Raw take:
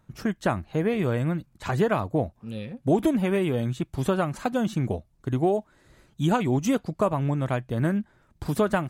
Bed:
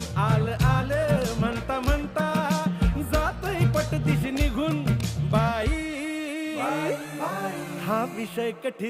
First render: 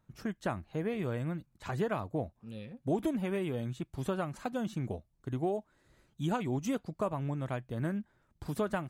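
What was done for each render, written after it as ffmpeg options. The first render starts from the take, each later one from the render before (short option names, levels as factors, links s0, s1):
-af "volume=0.335"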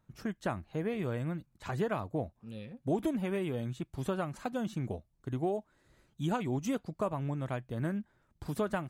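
-af anull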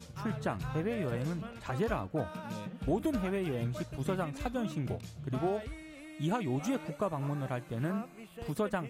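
-filter_complex "[1:a]volume=0.126[s0];[0:a][s0]amix=inputs=2:normalize=0"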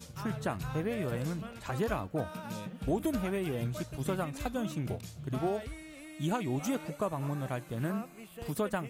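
-af "crystalizer=i=1:c=0"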